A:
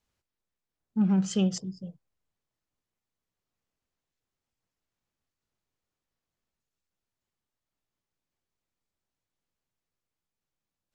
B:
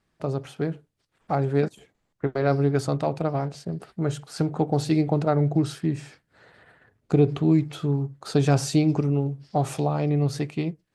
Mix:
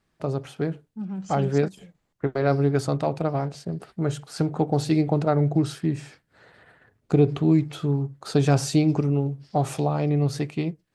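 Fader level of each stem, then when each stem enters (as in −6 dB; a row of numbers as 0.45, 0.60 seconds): −8.5, +0.5 decibels; 0.00, 0.00 seconds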